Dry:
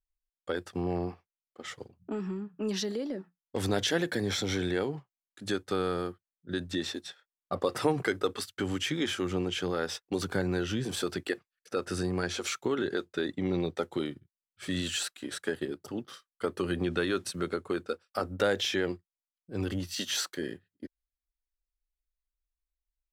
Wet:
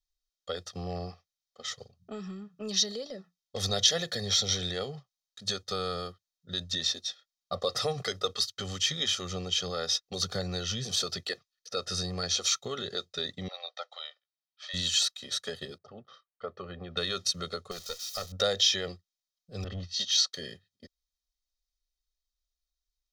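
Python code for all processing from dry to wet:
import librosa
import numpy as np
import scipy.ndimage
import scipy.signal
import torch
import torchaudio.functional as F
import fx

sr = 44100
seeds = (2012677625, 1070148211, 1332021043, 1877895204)

y = fx.chain(x, sr, fx.steep_highpass(hz=590.0, slope=48),
    fx.air_absorb(metres=170.0), at=(13.48, 14.74))
y = fx.chain(y, sr, fx.lowpass(hz=1400.0, slope=12),
    fx.low_shelf(hz=360.0, db=-7.5), at=(15.78, 16.97))
y = fx.chain(y, sr, fx.crossing_spikes(level_db=-31.0),
    fx.peak_eq(hz=280.0, db=-14.0, octaves=0.29),
    fx.tube_stage(drive_db=27.0, bias=0.65), at=(17.71, 18.32))
y = fx.chain(y, sr, fx.lowpass(hz=5200.0, slope=12),
    fx.overload_stage(gain_db=27.0),
    fx.band_widen(depth_pct=100), at=(19.64, 20.34))
y = fx.band_shelf(y, sr, hz=4700.0, db=13.5, octaves=1.2)
y = y + 0.91 * np.pad(y, (int(1.6 * sr / 1000.0), 0))[:len(y)]
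y = y * librosa.db_to_amplitude(-5.5)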